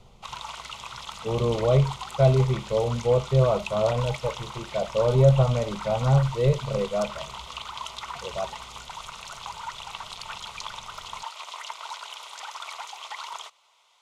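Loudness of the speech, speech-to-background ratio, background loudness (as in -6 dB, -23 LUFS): -24.0 LUFS, 13.5 dB, -37.5 LUFS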